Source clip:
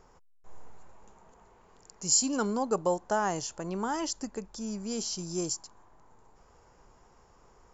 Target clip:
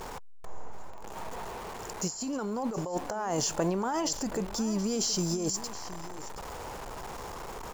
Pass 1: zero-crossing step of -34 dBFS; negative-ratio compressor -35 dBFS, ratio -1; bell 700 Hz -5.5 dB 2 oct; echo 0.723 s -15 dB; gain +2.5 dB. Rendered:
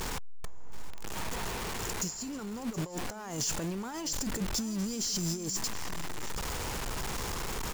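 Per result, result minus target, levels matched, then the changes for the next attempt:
zero-crossing step: distortion +10 dB; 500 Hz band -5.0 dB
change: zero-crossing step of -45 dBFS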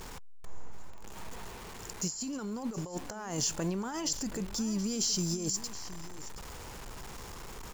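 500 Hz band -5.5 dB
change: bell 700 Hz +5 dB 2 oct

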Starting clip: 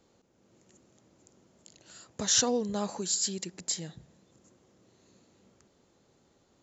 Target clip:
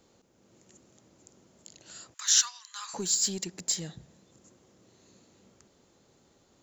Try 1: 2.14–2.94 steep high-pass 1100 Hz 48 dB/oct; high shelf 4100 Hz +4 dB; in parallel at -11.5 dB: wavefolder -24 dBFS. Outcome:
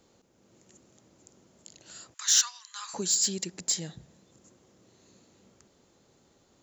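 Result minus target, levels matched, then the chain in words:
wavefolder: distortion -11 dB
2.14–2.94 steep high-pass 1100 Hz 48 dB/oct; high shelf 4100 Hz +4 dB; in parallel at -11.5 dB: wavefolder -34.5 dBFS

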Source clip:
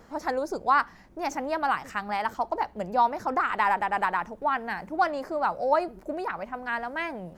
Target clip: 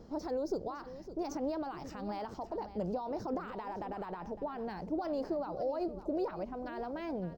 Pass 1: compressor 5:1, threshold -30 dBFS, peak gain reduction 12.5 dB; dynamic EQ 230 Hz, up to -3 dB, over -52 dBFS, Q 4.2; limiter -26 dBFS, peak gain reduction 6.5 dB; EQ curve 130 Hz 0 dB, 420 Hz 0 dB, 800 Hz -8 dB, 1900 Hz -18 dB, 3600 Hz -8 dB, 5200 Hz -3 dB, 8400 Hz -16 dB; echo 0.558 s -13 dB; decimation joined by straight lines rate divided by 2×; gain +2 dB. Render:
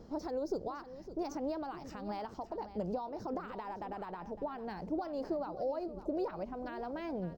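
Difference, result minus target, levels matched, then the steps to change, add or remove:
compressor: peak gain reduction +12.5 dB
remove: compressor 5:1, threshold -30 dBFS, peak gain reduction 12.5 dB

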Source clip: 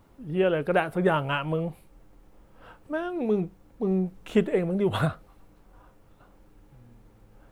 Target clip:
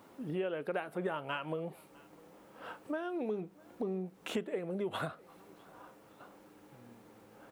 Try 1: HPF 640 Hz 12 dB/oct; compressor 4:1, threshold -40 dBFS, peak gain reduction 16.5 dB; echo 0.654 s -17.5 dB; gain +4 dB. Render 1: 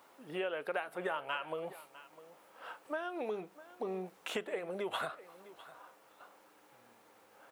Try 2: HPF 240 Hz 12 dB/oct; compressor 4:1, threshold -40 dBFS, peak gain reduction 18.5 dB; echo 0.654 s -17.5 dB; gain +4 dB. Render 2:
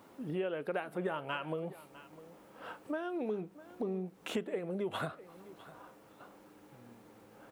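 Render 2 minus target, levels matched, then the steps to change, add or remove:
echo-to-direct +7.5 dB
change: echo 0.654 s -25 dB

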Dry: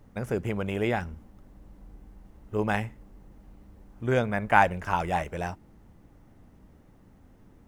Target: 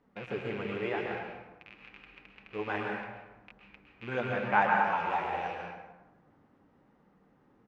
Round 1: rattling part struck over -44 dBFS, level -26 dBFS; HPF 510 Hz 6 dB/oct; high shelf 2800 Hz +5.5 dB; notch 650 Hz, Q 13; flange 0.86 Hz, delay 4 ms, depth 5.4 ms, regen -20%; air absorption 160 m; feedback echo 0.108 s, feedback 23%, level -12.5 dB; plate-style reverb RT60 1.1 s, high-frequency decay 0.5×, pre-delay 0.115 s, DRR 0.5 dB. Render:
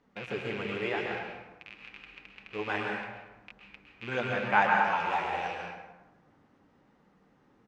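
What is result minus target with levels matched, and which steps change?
4000 Hz band +4.5 dB
change: high shelf 2800 Hz -5 dB

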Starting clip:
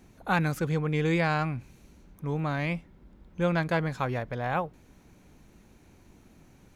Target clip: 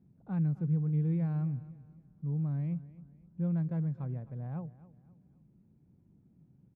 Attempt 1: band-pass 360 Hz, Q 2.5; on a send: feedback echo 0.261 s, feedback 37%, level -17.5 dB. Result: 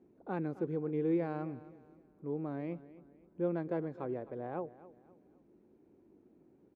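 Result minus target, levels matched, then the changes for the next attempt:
500 Hz band +16.5 dB
change: band-pass 150 Hz, Q 2.5

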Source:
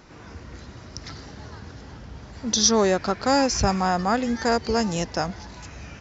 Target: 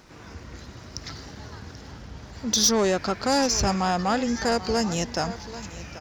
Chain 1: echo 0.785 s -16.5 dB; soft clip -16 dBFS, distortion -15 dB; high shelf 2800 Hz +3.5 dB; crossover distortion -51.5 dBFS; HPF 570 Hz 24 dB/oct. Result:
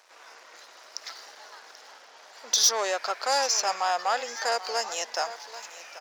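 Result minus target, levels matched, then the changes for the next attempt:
crossover distortion: distortion +8 dB; 500 Hz band -3.5 dB
change: crossover distortion -59.5 dBFS; remove: HPF 570 Hz 24 dB/oct

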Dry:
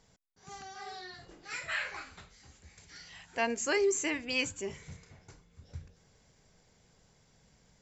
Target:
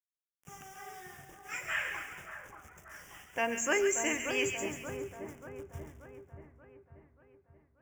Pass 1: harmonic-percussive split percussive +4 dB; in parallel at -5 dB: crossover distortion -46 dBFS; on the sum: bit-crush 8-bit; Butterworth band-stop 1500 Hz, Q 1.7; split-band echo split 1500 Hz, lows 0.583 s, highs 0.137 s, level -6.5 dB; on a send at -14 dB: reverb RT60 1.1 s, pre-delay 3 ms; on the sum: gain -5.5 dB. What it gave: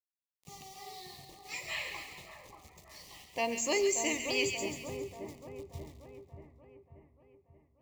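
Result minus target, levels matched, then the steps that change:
4000 Hz band +5.0 dB
change: Butterworth band-stop 4200 Hz, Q 1.7

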